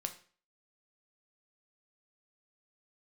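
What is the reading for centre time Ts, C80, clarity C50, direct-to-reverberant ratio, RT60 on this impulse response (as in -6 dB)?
9 ms, 17.0 dB, 12.5 dB, 5.5 dB, 0.45 s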